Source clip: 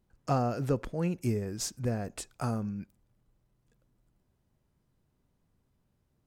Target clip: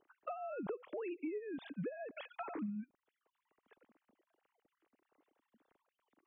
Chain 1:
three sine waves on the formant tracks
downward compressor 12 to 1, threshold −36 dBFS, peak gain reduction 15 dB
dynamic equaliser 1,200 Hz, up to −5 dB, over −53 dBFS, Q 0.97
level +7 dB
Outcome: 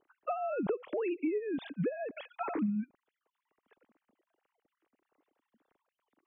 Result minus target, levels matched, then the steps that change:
downward compressor: peak gain reduction −9 dB
change: downward compressor 12 to 1, threshold −46 dBFS, peak gain reduction 24 dB

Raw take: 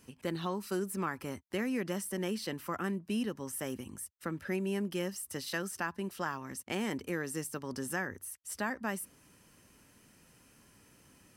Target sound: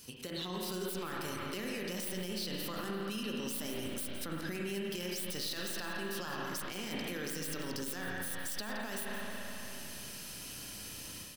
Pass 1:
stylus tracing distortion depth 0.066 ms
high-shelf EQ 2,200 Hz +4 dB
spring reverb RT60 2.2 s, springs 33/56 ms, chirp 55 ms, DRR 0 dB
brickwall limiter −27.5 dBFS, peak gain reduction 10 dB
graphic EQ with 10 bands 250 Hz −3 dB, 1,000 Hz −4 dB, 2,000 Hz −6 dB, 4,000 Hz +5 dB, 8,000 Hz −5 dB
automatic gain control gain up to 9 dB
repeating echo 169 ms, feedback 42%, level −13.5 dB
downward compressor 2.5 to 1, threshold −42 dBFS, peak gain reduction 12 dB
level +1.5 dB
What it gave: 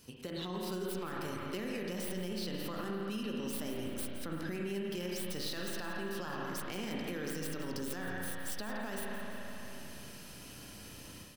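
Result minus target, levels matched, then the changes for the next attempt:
4,000 Hz band −3.0 dB
change: high-shelf EQ 2,200 Hz +13 dB

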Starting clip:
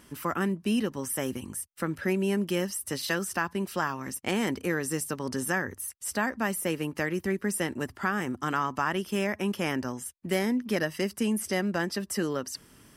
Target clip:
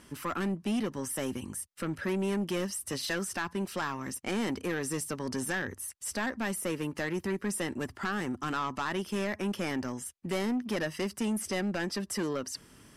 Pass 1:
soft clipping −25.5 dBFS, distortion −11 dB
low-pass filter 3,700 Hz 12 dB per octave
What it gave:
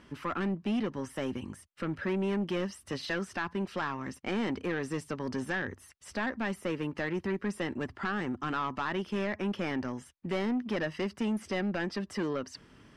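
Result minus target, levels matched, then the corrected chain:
8,000 Hz band −13.5 dB
soft clipping −25.5 dBFS, distortion −11 dB
low-pass filter 11,000 Hz 12 dB per octave

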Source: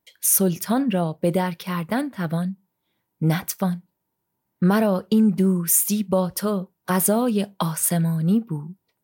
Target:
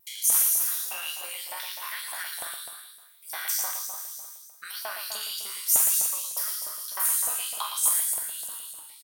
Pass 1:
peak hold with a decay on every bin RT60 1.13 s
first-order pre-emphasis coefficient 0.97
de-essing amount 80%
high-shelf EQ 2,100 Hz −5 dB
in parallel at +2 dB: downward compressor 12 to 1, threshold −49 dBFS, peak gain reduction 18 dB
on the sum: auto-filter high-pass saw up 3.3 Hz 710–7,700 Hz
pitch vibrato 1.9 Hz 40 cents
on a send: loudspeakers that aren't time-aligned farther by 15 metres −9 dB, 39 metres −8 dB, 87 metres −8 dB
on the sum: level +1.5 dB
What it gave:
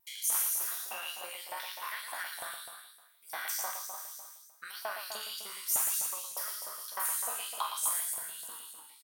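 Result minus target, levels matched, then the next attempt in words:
2,000 Hz band +5.0 dB
peak hold with a decay on every bin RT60 1.13 s
first-order pre-emphasis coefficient 0.97
de-essing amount 80%
high-shelf EQ 2,100 Hz +5 dB
in parallel at +2 dB: downward compressor 12 to 1, threshold −49 dBFS, peak gain reduction 27 dB
on the sum: auto-filter high-pass saw up 3.3 Hz 710–7,700 Hz
pitch vibrato 1.9 Hz 40 cents
on a send: loudspeakers that aren't time-aligned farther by 15 metres −9 dB, 39 metres −8 dB, 87 metres −8 dB
on the sum: level +1.5 dB

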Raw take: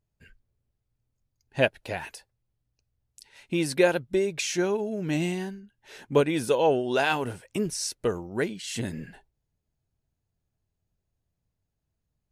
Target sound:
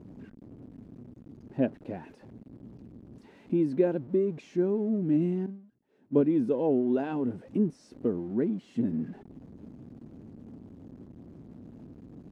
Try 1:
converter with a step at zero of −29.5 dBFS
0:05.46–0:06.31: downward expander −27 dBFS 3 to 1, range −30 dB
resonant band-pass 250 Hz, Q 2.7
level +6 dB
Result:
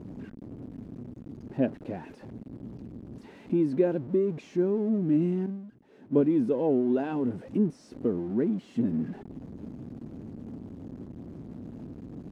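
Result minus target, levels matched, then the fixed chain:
converter with a step at zero: distortion +5 dB
converter with a step at zero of −35.5 dBFS
0:05.46–0:06.31: downward expander −27 dBFS 3 to 1, range −30 dB
resonant band-pass 250 Hz, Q 2.7
level +6 dB

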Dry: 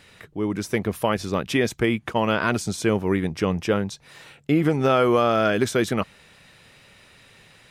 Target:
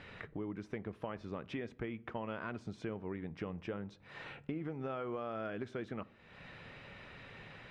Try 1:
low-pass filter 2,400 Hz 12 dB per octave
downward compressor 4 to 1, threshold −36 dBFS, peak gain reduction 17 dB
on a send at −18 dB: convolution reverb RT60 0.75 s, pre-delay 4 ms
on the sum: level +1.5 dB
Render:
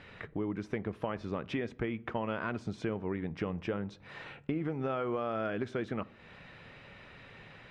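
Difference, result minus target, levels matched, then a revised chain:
downward compressor: peak gain reduction −6.5 dB
low-pass filter 2,400 Hz 12 dB per octave
downward compressor 4 to 1, threshold −44.5 dBFS, peak gain reduction 23.5 dB
on a send at −18 dB: convolution reverb RT60 0.75 s, pre-delay 4 ms
on the sum: level +1.5 dB

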